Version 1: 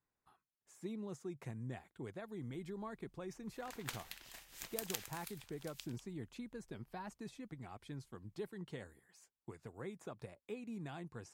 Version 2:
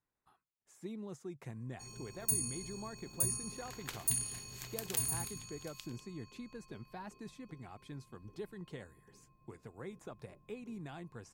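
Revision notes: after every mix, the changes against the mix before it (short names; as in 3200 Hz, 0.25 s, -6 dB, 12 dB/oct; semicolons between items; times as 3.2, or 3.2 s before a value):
first sound: unmuted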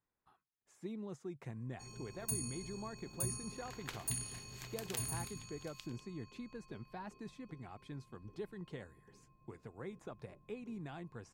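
master: add high shelf 7200 Hz -10 dB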